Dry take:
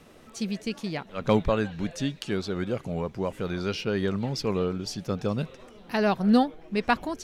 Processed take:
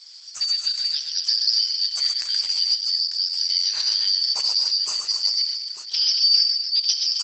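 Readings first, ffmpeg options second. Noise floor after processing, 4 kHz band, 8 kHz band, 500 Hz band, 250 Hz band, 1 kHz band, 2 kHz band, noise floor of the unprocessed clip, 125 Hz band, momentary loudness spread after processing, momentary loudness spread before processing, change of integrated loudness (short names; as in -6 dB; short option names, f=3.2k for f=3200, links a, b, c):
-38 dBFS, +22.0 dB, +15.5 dB, under -25 dB, under -40 dB, under -15 dB, -8.0 dB, -52 dBFS, under -35 dB, 6 LU, 9 LU, +9.0 dB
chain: -af "afftfilt=real='real(if(lt(b,272),68*(eq(floor(b/68),0)*3+eq(floor(b/68),1)*2+eq(floor(b/68),2)*1+eq(floor(b/68),3)*0)+mod(b,68),b),0)':imag='imag(if(lt(b,272),68*(eq(floor(b/68),0)*3+eq(floor(b/68),1)*2+eq(floor(b/68),2)*1+eq(floor(b/68),3)*0)+mod(b,68),b),0)':win_size=2048:overlap=0.75,bass=f=250:g=-14,treble=f=4k:g=14,acompressor=threshold=-17dB:ratio=4,equalizer=f=320:t=o:w=1.1:g=-14.5,aecho=1:1:67|125|229|273|895:0.316|0.562|0.251|0.335|0.266" -ar 48000 -c:a libopus -b:a 12k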